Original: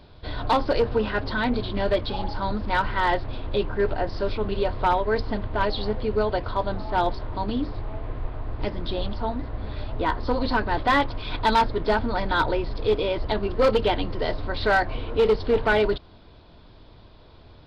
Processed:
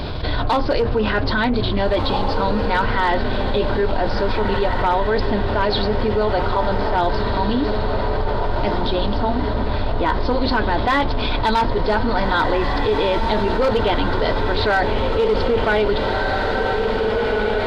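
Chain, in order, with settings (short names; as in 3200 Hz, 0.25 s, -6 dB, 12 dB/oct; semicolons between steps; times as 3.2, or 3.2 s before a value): diffused feedback echo 1.738 s, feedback 56%, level -8 dB; fast leveller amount 70%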